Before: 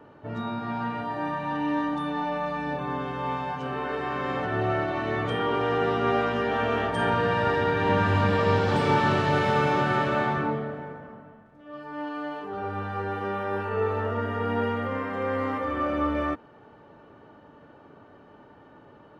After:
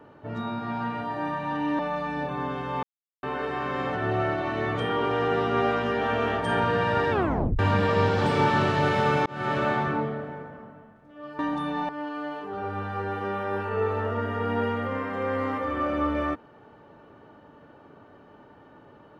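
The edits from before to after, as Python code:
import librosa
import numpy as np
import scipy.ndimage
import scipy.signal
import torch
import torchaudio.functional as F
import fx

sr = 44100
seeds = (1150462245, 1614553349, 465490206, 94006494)

y = fx.edit(x, sr, fx.move(start_s=1.79, length_s=0.5, to_s=11.89),
    fx.silence(start_s=3.33, length_s=0.4),
    fx.tape_stop(start_s=7.61, length_s=0.48),
    fx.fade_in_span(start_s=9.76, length_s=0.31), tone=tone)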